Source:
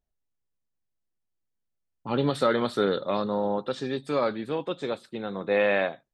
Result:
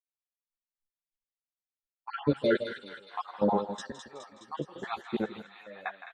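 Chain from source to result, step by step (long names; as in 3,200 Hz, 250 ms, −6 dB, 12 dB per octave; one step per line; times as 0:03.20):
time-frequency cells dropped at random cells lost 51%
automatic gain control gain up to 15.5 dB
dynamic equaliser 3,300 Hz, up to −4 dB, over −40 dBFS, Q 1.2
gate pattern "....x.xx.x." 123 BPM −24 dB
parametric band 6,800 Hz −14.5 dB 1.4 octaves, from 0:02.36 +2.5 dB, from 0:03.82 −8 dB
single-tap delay 163 ms −12.5 dB
downward expander −53 dBFS
delay with a high-pass on its return 209 ms, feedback 61%, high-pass 1,900 Hz, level −5 dB
string-ensemble chorus
level −5.5 dB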